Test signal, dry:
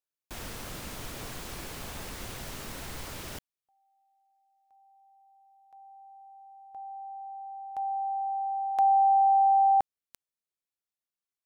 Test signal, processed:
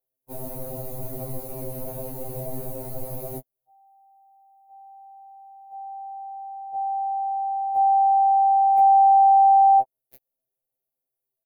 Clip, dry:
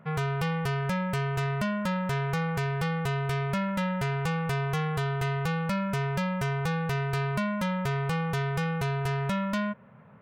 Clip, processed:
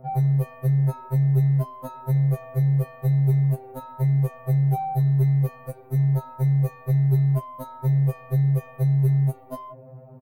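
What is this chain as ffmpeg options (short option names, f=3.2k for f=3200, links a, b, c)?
-af "firequalizer=gain_entry='entry(270,0);entry(620,9);entry(1600,-21);entry(6500,-11);entry(12000,15)':delay=0.05:min_phase=1,acompressor=threshold=-24dB:ratio=6:attack=0.93:release=187:knee=6:detection=rms,highshelf=f=6.3k:g=-11.5,aecho=1:1:7.3:0.54,afftfilt=real='re*2.45*eq(mod(b,6),0)':imag='im*2.45*eq(mod(b,6),0)':win_size=2048:overlap=0.75,volume=7.5dB"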